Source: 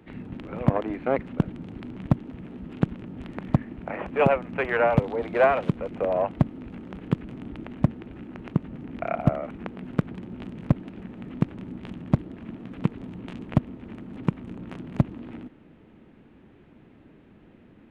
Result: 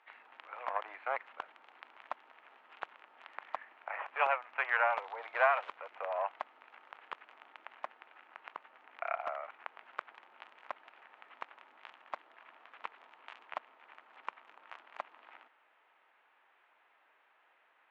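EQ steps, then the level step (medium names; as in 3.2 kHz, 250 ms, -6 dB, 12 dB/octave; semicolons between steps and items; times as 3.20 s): high-pass 870 Hz 24 dB/octave; distance through air 76 m; treble shelf 3.6 kHz -10.5 dB; 0.0 dB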